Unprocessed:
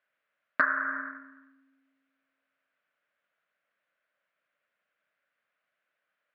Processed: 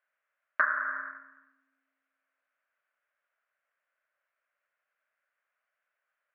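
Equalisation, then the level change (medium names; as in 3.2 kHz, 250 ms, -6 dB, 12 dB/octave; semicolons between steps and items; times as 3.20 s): band-pass 650–2200 Hz; 0.0 dB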